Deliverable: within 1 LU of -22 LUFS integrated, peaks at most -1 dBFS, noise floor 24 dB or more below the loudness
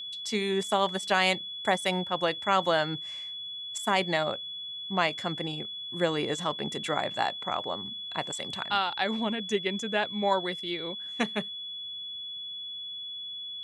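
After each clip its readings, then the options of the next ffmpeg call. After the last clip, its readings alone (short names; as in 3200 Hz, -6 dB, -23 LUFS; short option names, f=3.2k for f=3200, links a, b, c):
steady tone 3400 Hz; tone level -36 dBFS; loudness -30.0 LUFS; peak -10.0 dBFS; loudness target -22.0 LUFS
-> -af "bandreject=f=3.4k:w=30"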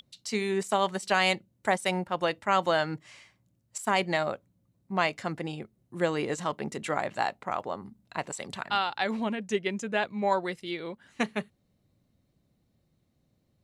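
steady tone none; loudness -30.0 LUFS; peak -10.5 dBFS; loudness target -22.0 LUFS
-> -af "volume=8dB"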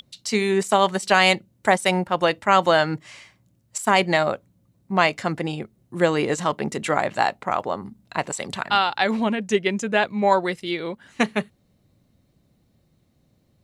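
loudness -22.0 LUFS; peak -2.5 dBFS; noise floor -65 dBFS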